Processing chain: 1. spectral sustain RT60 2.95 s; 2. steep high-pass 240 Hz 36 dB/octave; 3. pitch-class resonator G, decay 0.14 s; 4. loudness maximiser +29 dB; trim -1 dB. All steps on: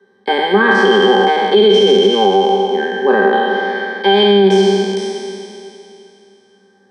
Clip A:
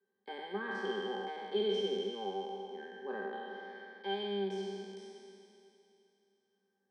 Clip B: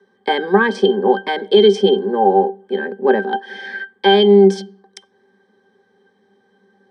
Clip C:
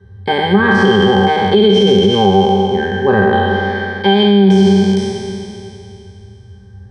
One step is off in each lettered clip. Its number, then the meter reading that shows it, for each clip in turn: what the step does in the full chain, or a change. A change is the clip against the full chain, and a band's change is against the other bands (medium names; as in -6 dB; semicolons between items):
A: 4, crest factor change +6.0 dB; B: 1, momentary loudness spread change +4 LU; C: 2, 250 Hz band +6.5 dB